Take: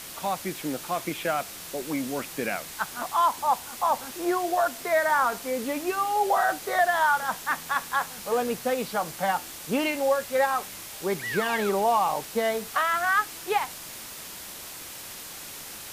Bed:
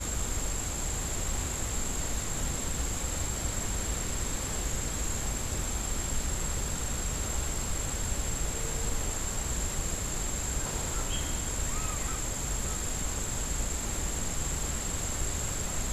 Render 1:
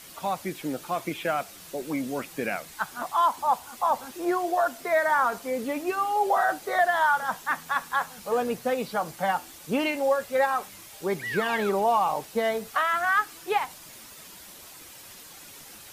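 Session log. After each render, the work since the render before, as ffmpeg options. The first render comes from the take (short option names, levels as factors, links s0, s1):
-af "afftdn=nr=8:nf=-41"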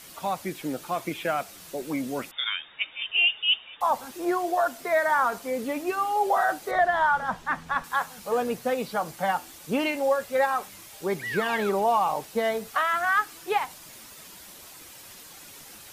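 -filter_complex "[0:a]asettb=1/sr,asplit=3[s0][s1][s2];[s0]atrim=end=2.314[s3];[s1]atrim=start=2.31:end=3.81,asetpts=PTS-STARTPTS,afade=t=in:d=0.004:c=qsin,afade=t=out:st=1.496:d=0.004:c=qsin,lowpass=f=3200:t=q:w=0.5098,lowpass=f=3200:t=q:w=0.6013,lowpass=f=3200:t=q:w=0.9,lowpass=f=3200:t=q:w=2.563,afreqshift=-3800[s4];[s2]atrim=start=3.806[s5];[s3][s4]acrossfade=d=0.004:c1=hsin:c2=qsin[s6];[s6][s5]acrossfade=d=0.004:c1=qsin:c2=hsin,asettb=1/sr,asplit=3[s7][s8][s9];[s7]atrim=end=6.714[s10];[s8]atrim=start=6.71:end=7.84,asetpts=PTS-STARTPTS,afade=t=in:d=0.004:c=qsin,afade=t=out:st=1.126:d=0.004:c=qsin,aemphasis=mode=reproduction:type=bsi[s11];[s9]atrim=start=7.836[s12];[s10][s11]acrossfade=d=0.004:c1=hsin:c2=qsin[s13];[s13][s12]acrossfade=d=0.004:c1=qsin:c2=hsin"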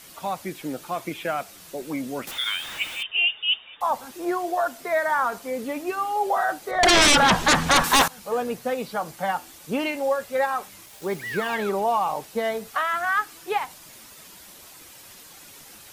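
-filter_complex "[0:a]asettb=1/sr,asplit=3[s0][s1][s2];[s0]atrim=end=2.274[s3];[s1]atrim=start=2.27:end=3.03,asetpts=PTS-STARTPTS,afade=t=in:d=0.004:c=qsin,afade=t=out:st=0.756:d=0.004:c=qsin,aeval=exprs='val(0)+0.5*0.0282*sgn(val(0))':c=same[s4];[s2]atrim=start=3.026[s5];[s3][s4]acrossfade=d=0.004:c1=hsin:c2=qsin[s6];[s6][s5]acrossfade=d=0.004:c1=qsin:c2=hsin,asettb=1/sr,asplit=3[s7][s8][s9];[s7]atrim=end=6.834[s10];[s8]atrim=start=6.83:end=8.08,asetpts=PTS-STARTPTS,afade=t=in:d=0.004:c=qsin,afade=t=out:st=1.246:d=0.004:c=qsin,aeval=exprs='0.237*sin(PI/2*5.62*val(0)/0.237)':c=same[s11];[s9]atrim=start=8.076[s12];[s10][s11]acrossfade=d=0.004:c1=hsin:c2=qsin[s13];[s13][s12]acrossfade=d=0.004:c1=qsin:c2=hsin,asettb=1/sr,asplit=3[s14][s15][s16];[s14]atrim=end=10.864[s17];[s15]atrim=start=10.86:end=11.55,asetpts=PTS-STARTPTS,afade=t=in:d=0.004:c=qsin,afade=t=out:st=0.686:d=0.004:c=qsin,acrusher=bits=6:mix=0:aa=0.5[s18];[s16]atrim=start=11.546[s19];[s17][s18]acrossfade=d=0.004:c1=hsin:c2=qsin[s20];[s20][s19]acrossfade=d=0.004:c1=qsin:c2=hsin"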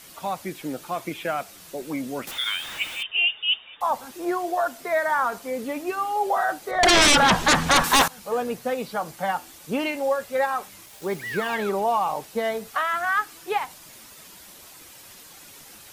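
-af anull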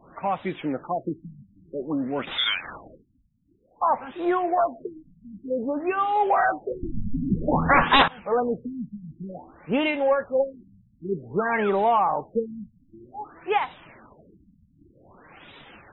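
-filter_complex "[0:a]asplit=2[s0][s1];[s1]asoftclip=type=tanh:threshold=0.0708,volume=0.531[s2];[s0][s2]amix=inputs=2:normalize=0,afftfilt=real='re*lt(b*sr/1024,250*pow(4000/250,0.5+0.5*sin(2*PI*0.53*pts/sr)))':imag='im*lt(b*sr/1024,250*pow(4000/250,0.5+0.5*sin(2*PI*0.53*pts/sr)))':win_size=1024:overlap=0.75"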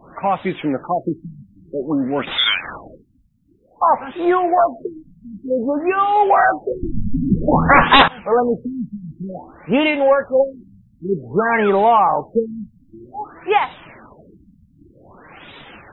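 -af "volume=2.37,alimiter=limit=0.794:level=0:latency=1"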